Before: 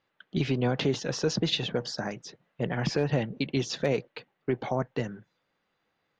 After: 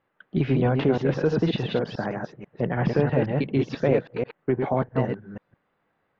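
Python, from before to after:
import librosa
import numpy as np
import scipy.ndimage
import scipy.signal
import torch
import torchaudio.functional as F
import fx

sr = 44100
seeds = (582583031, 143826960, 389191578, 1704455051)

y = fx.reverse_delay(x, sr, ms=163, wet_db=-3.5)
y = scipy.signal.sosfilt(scipy.signal.butter(2, 1800.0, 'lowpass', fs=sr, output='sos'), y)
y = y * 10.0 ** (4.5 / 20.0)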